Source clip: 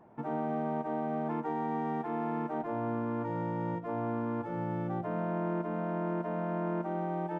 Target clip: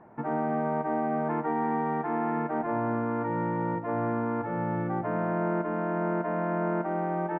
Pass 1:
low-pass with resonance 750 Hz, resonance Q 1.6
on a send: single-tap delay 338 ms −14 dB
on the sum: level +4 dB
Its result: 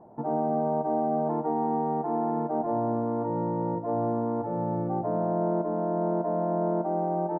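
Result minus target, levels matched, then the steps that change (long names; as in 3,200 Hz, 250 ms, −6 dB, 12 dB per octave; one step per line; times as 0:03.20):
2,000 Hz band −17.5 dB
change: low-pass with resonance 1,900 Hz, resonance Q 1.6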